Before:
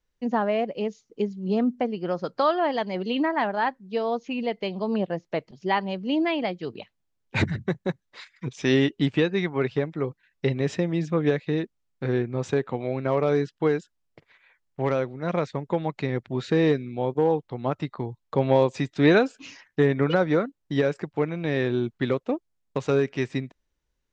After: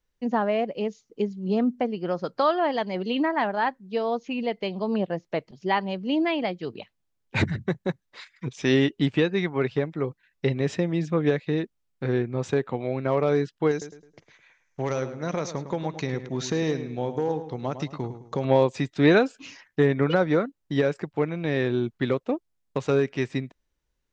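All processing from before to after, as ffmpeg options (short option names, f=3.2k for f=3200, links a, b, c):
-filter_complex "[0:a]asettb=1/sr,asplit=3[a][b][c];[a]atrim=end=13.714[d];[b]atrim=start=13.71:end=18.45,asetpts=PTS-STARTPTS,afade=t=in:d=0.004:c=qsin,afade=t=out:st=4.736:d=0.004:c=qsin,acompressor=threshold=-23dB:ratio=2.5:attack=3.2:release=140:knee=1:detection=peak,lowpass=f=6.2k:t=q:w=9.8,asplit=2[e][f];[f]adelay=106,lowpass=f=3.1k:p=1,volume=-10.5dB,asplit=2[g][h];[h]adelay=106,lowpass=f=3.1k:p=1,volume=0.37,asplit=2[i][j];[j]adelay=106,lowpass=f=3.1k:p=1,volume=0.37,asplit=2[k][l];[l]adelay=106,lowpass=f=3.1k:p=1,volume=0.37[m];[e][g][i][k][m]amix=inputs=5:normalize=0,atrim=end_sample=209034[n];[c]atrim=start=18.446[o];[d][n]acrossfade=d=0.004:c1=hsin:c2=qsin[p];[p][o]acrossfade=d=0.004:c1=qsin:c2=hsin"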